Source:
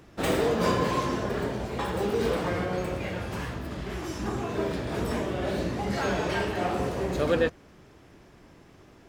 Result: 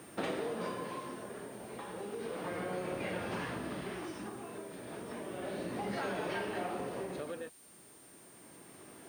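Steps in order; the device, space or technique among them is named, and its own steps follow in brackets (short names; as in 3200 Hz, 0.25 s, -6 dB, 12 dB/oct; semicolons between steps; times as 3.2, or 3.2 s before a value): medium wave at night (BPF 180–4300 Hz; compressor 6:1, threshold -36 dBFS, peak gain reduction 15.5 dB; tremolo 0.32 Hz, depth 64%; whine 9000 Hz -60 dBFS; white noise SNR 23 dB); gain +2 dB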